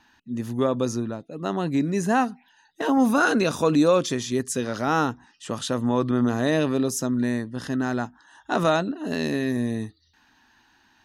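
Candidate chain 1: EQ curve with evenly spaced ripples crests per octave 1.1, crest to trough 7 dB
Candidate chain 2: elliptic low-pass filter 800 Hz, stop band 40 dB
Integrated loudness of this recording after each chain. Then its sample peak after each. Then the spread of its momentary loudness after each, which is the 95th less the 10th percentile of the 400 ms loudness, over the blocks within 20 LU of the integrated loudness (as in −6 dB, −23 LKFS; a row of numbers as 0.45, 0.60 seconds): −23.0, −25.5 LKFS; −6.0, −10.5 dBFS; 13, 11 LU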